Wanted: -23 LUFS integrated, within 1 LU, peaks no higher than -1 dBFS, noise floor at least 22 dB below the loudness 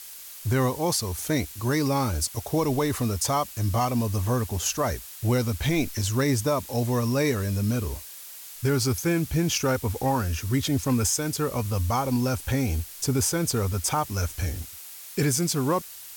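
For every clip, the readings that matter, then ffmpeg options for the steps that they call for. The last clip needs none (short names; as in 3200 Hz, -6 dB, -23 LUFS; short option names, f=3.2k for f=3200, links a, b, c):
noise floor -42 dBFS; noise floor target -48 dBFS; loudness -26.0 LUFS; peak -14.0 dBFS; loudness target -23.0 LUFS
-> -af "afftdn=nr=6:nf=-42"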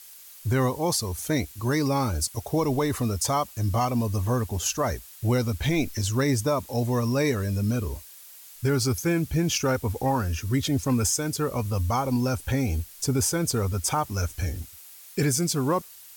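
noise floor -47 dBFS; noise floor target -48 dBFS
-> -af "afftdn=nr=6:nf=-47"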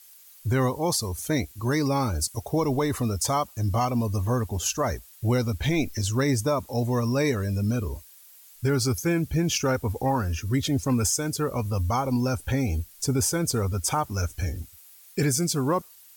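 noise floor -51 dBFS; loudness -26.0 LUFS; peak -14.0 dBFS; loudness target -23.0 LUFS
-> -af "volume=3dB"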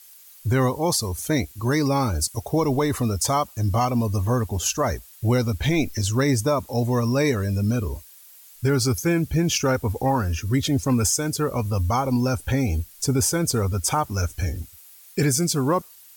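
loudness -23.0 LUFS; peak -11.0 dBFS; noise floor -48 dBFS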